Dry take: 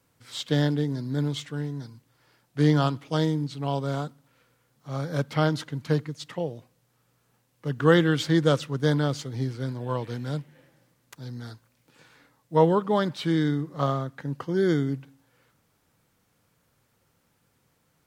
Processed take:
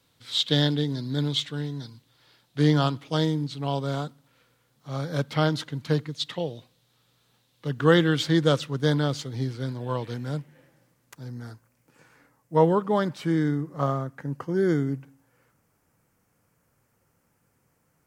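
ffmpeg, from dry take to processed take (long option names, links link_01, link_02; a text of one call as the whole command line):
ffmpeg -i in.wav -af "asetnsamples=nb_out_samples=441:pad=0,asendcmd='2.59 equalizer g 4.5;6.13 equalizer g 13.5;7.67 equalizer g 3.5;10.14 equalizer g -3.5;11.23 equalizer g -11;12.55 equalizer g -4.5;13.18 equalizer g -10.5',equalizer=frequency=3700:width_type=o:width=0.71:gain=12" out.wav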